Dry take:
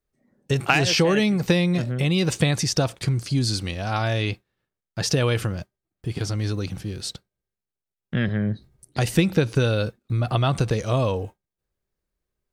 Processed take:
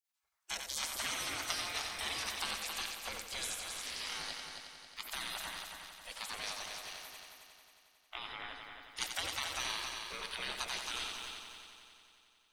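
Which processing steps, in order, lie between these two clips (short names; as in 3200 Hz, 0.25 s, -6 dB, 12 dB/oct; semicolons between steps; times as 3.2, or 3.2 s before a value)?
spectral gate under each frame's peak -30 dB weak; on a send: multi-head echo 90 ms, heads first and third, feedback 62%, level -6.5 dB; on the sum: gain +1 dB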